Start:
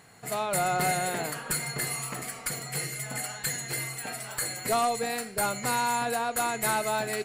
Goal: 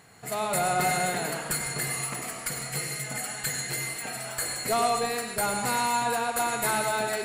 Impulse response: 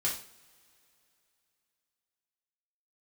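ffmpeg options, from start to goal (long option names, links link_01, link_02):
-filter_complex "[0:a]asplit=2[link_01][link_02];[1:a]atrim=start_sample=2205,asetrate=24255,aresample=44100,adelay=95[link_03];[link_02][link_03]afir=irnorm=-1:irlink=0,volume=-14dB[link_04];[link_01][link_04]amix=inputs=2:normalize=0"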